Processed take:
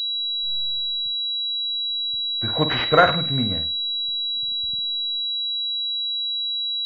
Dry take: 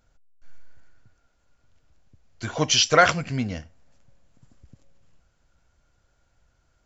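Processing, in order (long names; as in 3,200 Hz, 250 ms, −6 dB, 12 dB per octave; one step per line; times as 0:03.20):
flutter between parallel walls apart 8.7 metres, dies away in 0.32 s
switching amplifier with a slow clock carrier 3,900 Hz
level +2 dB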